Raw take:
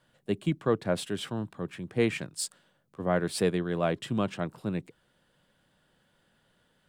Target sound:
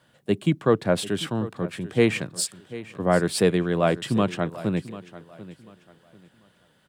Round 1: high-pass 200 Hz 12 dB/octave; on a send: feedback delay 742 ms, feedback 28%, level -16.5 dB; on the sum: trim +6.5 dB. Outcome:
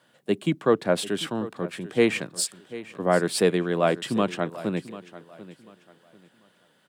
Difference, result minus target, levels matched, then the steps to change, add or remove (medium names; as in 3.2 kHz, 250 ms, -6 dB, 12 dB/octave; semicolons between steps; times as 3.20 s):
125 Hz band -4.5 dB
change: high-pass 57 Hz 12 dB/octave